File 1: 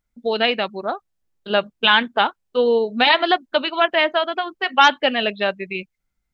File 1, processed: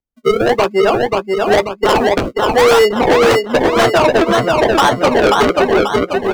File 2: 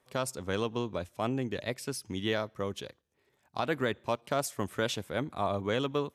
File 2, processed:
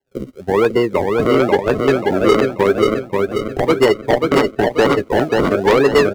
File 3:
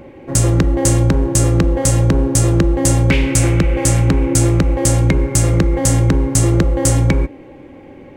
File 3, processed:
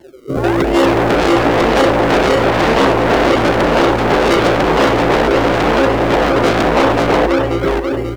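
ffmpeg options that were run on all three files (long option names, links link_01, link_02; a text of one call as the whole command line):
ffmpeg -i in.wav -filter_complex "[0:a]alimiter=limit=-8.5dB:level=0:latency=1:release=41,equalizer=frequency=400:width=3.4:gain=9,acrusher=samples=35:mix=1:aa=0.000001:lfo=1:lforange=35:lforate=0.97,asplit=2[link_01][link_02];[link_02]adelay=15,volume=-14dB[link_03];[link_01][link_03]amix=inputs=2:normalize=0,dynaudnorm=framelen=320:gausssize=3:maxgain=13.5dB,afftdn=noise_reduction=18:noise_floor=-20,asplit=2[link_04][link_05];[link_05]aecho=0:1:536|1072|1608|2144|2680:0.596|0.244|0.1|0.0411|0.0168[link_06];[link_04][link_06]amix=inputs=2:normalize=0,aeval=exprs='0.422*(abs(mod(val(0)/0.422+3,4)-2)-1)':channel_layout=same,acrossover=split=260[link_07][link_08];[link_07]acompressor=threshold=-29dB:ratio=5[link_09];[link_09][link_08]amix=inputs=2:normalize=0,asoftclip=type=tanh:threshold=-5.5dB,adynamicequalizer=threshold=0.00891:dfrequency=7100:dqfactor=0.7:tfrequency=7100:tqfactor=0.7:attack=5:release=100:ratio=0.375:range=3.5:mode=cutabove:tftype=highshelf,volume=5dB" out.wav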